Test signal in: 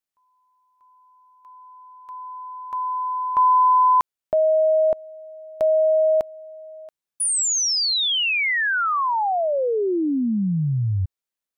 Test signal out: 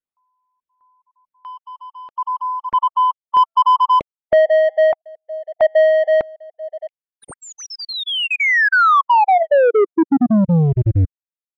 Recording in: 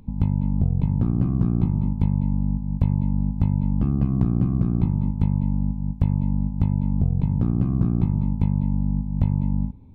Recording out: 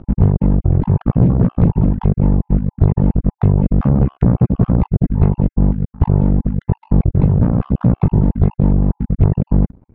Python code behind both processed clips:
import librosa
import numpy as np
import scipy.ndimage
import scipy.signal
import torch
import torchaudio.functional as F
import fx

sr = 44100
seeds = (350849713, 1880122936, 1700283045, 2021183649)

y = fx.spec_dropout(x, sr, seeds[0], share_pct=36)
y = fx.leveller(y, sr, passes=3)
y = scipy.signal.sosfilt(scipy.signal.butter(2, 1800.0, 'lowpass', fs=sr, output='sos'), y)
y = fx.dereverb_blind(y, sr, rt60_s=1.3)
y = y * librosa.db_to_amplitude(5.0)